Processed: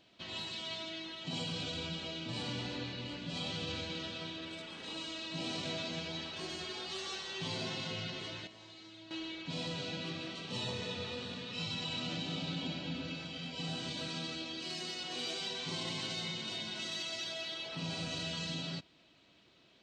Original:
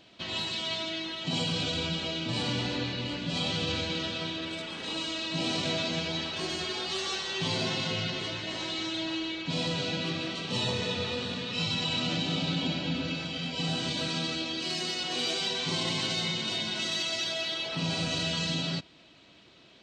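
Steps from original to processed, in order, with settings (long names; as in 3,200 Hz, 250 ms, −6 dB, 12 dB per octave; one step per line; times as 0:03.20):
0:08.47–0:09.11: tuned comb filter 110 Hz, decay 1 s, harmonics all, mix 80%
level −8.5 dB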